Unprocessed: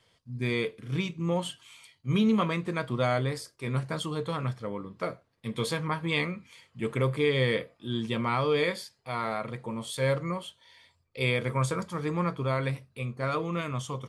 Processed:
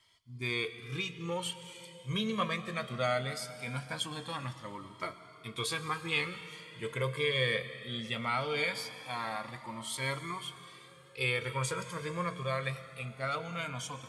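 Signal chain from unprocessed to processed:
tilt shelving filter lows −5 dB
convolution reverb RT60 3.6 s, pre-delay 92 ms, DRR 12 dB
flanger whose copies keep moving one way rising 0.2 Hz

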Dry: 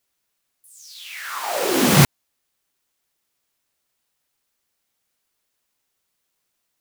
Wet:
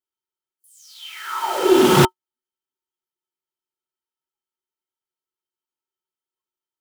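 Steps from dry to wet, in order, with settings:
noise reduction from a noise print of the clip's start 18 dB
hollow resonant body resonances 370/910/1,300/3,100 Hz, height 18 dB, ringing for 70 ms
highs frequency-modulated by the lows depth 0.26 ms
level −4 dB

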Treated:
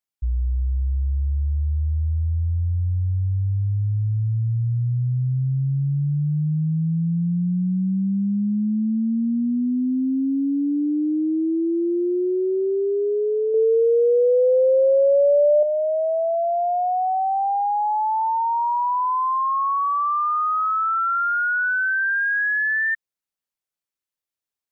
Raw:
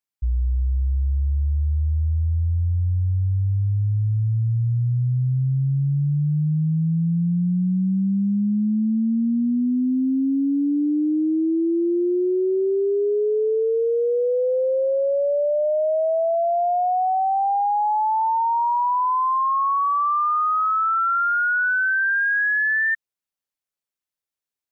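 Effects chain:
0:13.54–0:15.63: parametric band 720 Hz +6.5 dB 1.9 octaves
level −1 dB

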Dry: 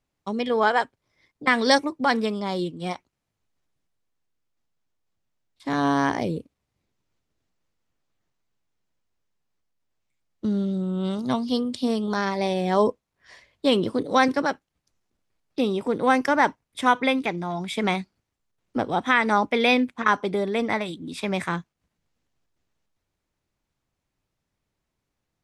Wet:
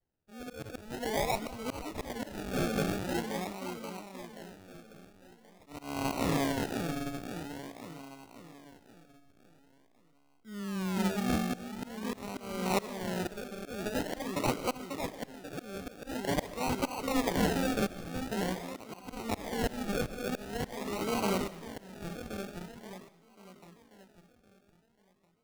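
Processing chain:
echo with a time of its own for lows and highs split 1,100 Hz, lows 535 ms, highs 281 ms, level −3 dB
pitch vibrato 0.59 Hz 37 cents
sample-and-hold swept by an LFO 35×, swing 60% 0.46 Hz
volume swells 451 ms
convolution reverb RT60 0.55 s, pre-delay 90 ms, DRR 16.5 dB
level −6 dB

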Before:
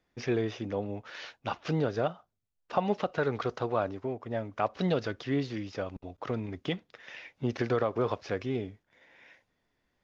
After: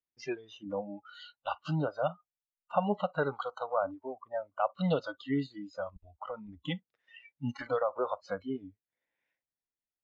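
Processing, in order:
noise reduction from a noise print of the clip's start 28 dB
dynamic equaliser 5,600 Hz, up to −4 dB, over −57 dBFS, Q 0.91

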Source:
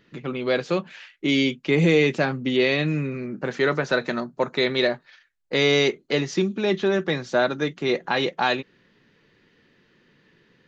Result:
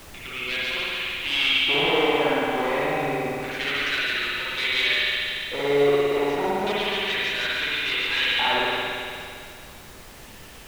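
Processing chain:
parametric band 730 Hz −13.5 dB 0.59 octaves
harmonic generator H 5 −10 dB, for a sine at −13 dBFS
auto-filter band-pass square 0.3 Hz 770–2,900 Hz
delay with a high-pass on its return 144 ms, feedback 59%, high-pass 1,700 Hz, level −3.5 dB
spring reverb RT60 2.4 s, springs 56 ms, chirp 50 ms, DRR −7.5 dB
background noise pink −44 dBFS

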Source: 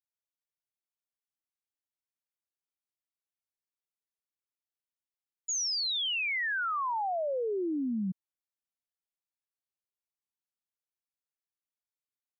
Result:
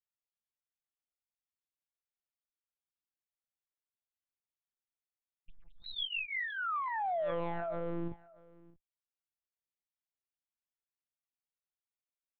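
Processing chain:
lower of the sound and its delayed copy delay 1.5 ms
reverb reduction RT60 0.83 s
0:06.72–0:08.08: leveller curve on the samples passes 2
single-tap delay 630 ms −22.5 dB
one-pitch LPC vocoder at 8 kHz 170 Hz
level −3.5 dB

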